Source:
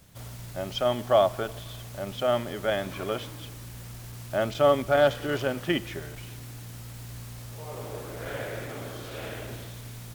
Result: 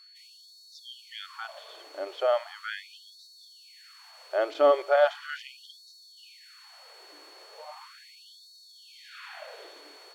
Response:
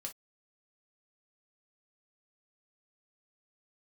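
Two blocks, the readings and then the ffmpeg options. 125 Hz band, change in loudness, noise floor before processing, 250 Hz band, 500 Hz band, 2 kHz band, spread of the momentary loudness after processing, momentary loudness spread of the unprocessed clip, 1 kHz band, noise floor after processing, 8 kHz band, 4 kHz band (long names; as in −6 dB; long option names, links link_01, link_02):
below −40 dB, 0.0 dB, −42 dBFS, −14.0 dB, −2.5 dB, −3.0 dB, 24 LU, 19 LU, −2.5 dB, −54 dBFS, below −10 dB, −4.5 dB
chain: -af "aeval=exprs='val(0)+0.00562*sin(2*PI*4400*n/s)':channel_layout=same,aemphasis=mode=reproduction:type=75fm,afftfilt=real='re*gte(b*sr/1024,290*pow(3700/290,0.5+0.5*sin(2*PI*0.38*pts/sr)))':imag='im*gte(b*sr/1024,290*pow(3700/290,0.5+0.5*sin(2*PI*0.38*pts/sr)))':win_size=1024:overlap=0.75"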